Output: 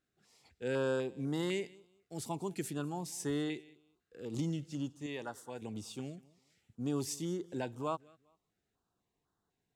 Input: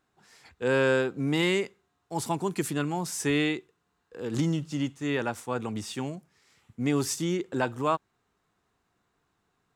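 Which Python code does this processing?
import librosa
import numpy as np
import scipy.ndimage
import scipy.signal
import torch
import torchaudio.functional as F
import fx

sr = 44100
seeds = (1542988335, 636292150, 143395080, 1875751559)

p1 = fx.low_shelf(x, sr, hz=410.0, db=-8.0, at=(5.06, 5.62))
p2 = p1 + fx.echo_feedback(p1, sr, ms=199, feedback_pct=24, wet_db=-23, dry=0)
p3 = fx.filter_held_notch(p2, sr, hz=4.0, low_hz=940.0, high_hz=2400.0)
y = p3 * librosa.db_to_amplitude(-8.5)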